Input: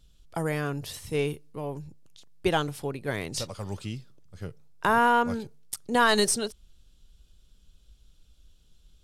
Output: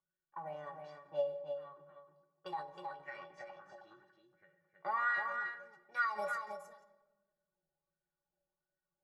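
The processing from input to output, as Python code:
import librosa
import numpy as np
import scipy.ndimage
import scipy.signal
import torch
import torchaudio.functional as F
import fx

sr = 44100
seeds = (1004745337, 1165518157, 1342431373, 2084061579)

p1 = fx.env_lowpass(x, sr, base_hz=900.0, full_db=-22.5)
p2 = fx.high_shelf(p1, sr, hz=3700.0, db=-11.0)
p3 = fx.formant_shift(p2, sr, semitones=4)
p4 = fx.bass_treble(p3, sr, bass_db=1, treble_db=15)
p5 = fx.stiff_resonator(p4, sr, f0_hz=170.0, decay_s=0.22, stiffness=0.03)
p6 = fx.wah_lfo(p5, sr, hz=1.4, low_hz=710.0, high_hz=1700.0, q=4.3)
p7 = fx.doubler(p6, sr, ms=14.0, db=-10.5)
p8 = p7 + fx.echo_single(p7, sr, ms=316, db=-6.0, dry=0)
p9 = fx.room_shoebox(p8, sr, seeds[0], volume_m3=620.0, walls='mixed', distance_m=0.44)
p10 = fx.end_taper(p9, sr, db_per_s=110.0)
y = p10 * 10.0 ** (7.0 / 20.0)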